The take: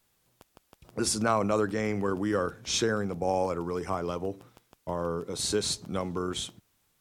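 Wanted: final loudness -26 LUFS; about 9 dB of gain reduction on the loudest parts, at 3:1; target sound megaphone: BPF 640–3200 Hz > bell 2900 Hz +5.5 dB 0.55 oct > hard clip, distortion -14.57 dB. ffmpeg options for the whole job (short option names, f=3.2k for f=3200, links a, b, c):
-af "acompressor=threshold=-34dB:ratio=3,highpass=640,lowpass=3.2k,equalizer=f=2.9k:t=o:w=0.55:g=5.5,asoftclip=type=hard:threshold=-33.5dB,volume=17dB"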